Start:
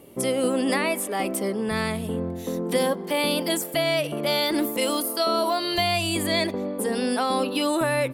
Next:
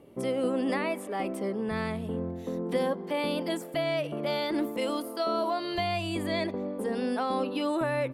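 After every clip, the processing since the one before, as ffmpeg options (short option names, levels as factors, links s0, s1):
-af "lowpass=f=1900:p=1,volume=0.596"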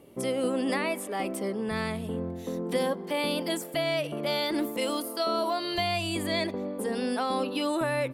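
-af "highshelf=f=3300:g=9"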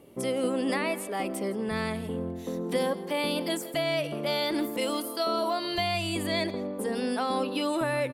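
-af "aecho=1:1:164:0.133"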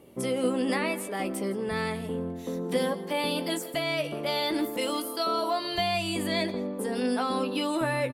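-filter_complex "[0:a]asplit=2[s0][s1];[s1]adelay=16,volume=0.398[s2];[s0][s2]amix=inputs=2:normalize=0"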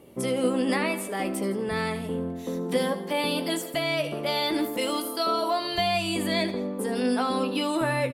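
-af "aecho=1:1:76:0.178,volume=1.26"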